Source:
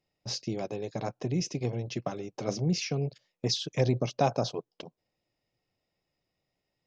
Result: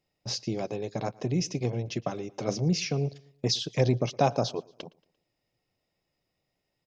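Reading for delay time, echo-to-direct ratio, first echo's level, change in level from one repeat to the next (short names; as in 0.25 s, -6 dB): 0.115 s, -23.0 dB, -24.0 dB, -7.5 dB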